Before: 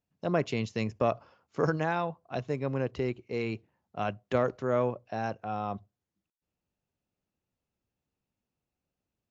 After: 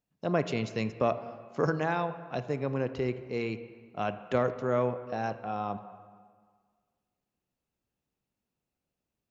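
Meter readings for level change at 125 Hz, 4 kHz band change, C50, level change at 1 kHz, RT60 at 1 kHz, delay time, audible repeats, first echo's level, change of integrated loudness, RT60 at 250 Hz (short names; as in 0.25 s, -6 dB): -0.5 dB, 0.0 dB, 12.0 dB, +0.5 dB, 1.8 s, none, none, none, 0.0 dB, 1.7 s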